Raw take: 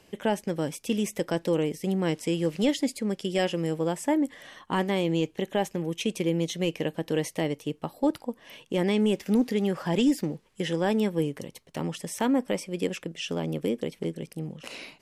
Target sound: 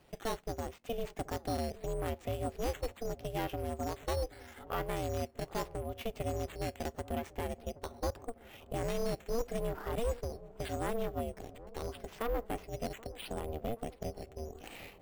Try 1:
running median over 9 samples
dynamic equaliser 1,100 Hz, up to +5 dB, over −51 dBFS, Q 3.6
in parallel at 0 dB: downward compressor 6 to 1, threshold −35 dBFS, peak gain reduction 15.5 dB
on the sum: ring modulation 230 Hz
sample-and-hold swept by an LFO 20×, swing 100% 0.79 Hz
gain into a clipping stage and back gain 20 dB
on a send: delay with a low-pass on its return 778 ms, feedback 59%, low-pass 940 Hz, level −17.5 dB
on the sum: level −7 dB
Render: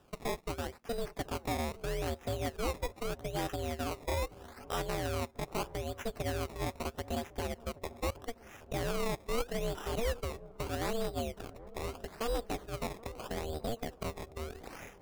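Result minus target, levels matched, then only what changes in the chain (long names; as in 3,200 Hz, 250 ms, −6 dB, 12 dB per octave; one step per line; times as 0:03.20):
sample-and-hold swept by an LFO: distortion +10 dB; downward compressor: peak gain reduction −6.5 dB
change: downward compressor 6 to 1, threshold −43 dBFS, peak gain reduction 22 dB
change: sample-and-hold swept by an LFO 6×, swing 100% 0.79 Hz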